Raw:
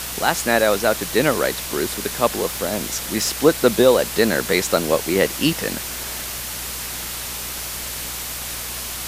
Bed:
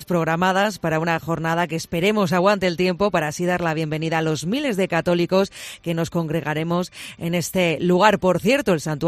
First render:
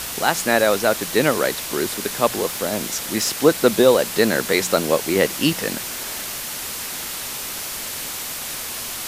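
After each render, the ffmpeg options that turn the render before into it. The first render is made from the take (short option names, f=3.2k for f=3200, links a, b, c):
-af "bandreject=f=60:t=h:w=4,bandreject=f=120:t=h:w=4,bandreject=f=180:t=h:w=4"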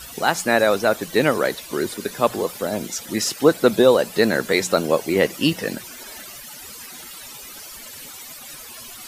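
-af "afftdn=nr=15:nf=-30"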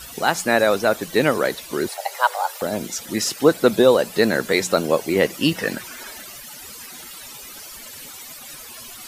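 -filter_complex "[0:a]asettb=1/sr,asplit=3[a][b][c];[a]atrim=end=1.884[d];[b]atrim=start=1.88:end=2.62,asetpts=PTS-STARTPTS,afade=t=in:d=0.004:c=qsin,afade=t=out:st=0.736:d=0.004:c=qsin,afreqshift=380[e];[c]atrim=start=2.616[f];[d][e]acrossfade=d=0.004:c1=hsin:c2=qsin[g];[g][f]acrossfade=d=0.004:c1=qsin:c2=hsin,asettb=1/sr,asplit=3[h][i][j];[h]atrim=end=5.554[k];[i]atrim=start=5.55:end=6.11,asetpts=PTS-STARTPTS,afade=t=in:d=0.004:c=qsin,afade=t=out:st=0.556:d=0.004:c=qsin,equalizer=f=1.5k:w=0.89:g=6[l];[j]atrim=start=6.106[m];[k][l]acrossfade=d=0.004:c1=hsin:c2=qsin[n];[n][m]acrossfade=d=0.004:c1=qsin:c2=hsin"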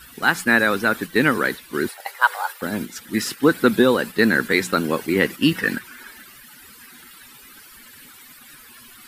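-af "agate=range=-6dB:threshold=-27dB:ratio=16:detection=peak,equalizer=f=250:t=o:w=0.67:g=5,equalizer=f=630:t=o:w=0.67:g=-11,equalizer=f=1.6k:t=o:w=0.67:g=7,equalizer=f=6.3k:t=o:w=0.67:g=-8"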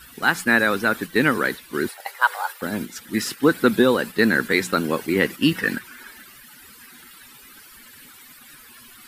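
-af "volume=-1dB,alimiter=limit=-3dB:level=0:latency=1"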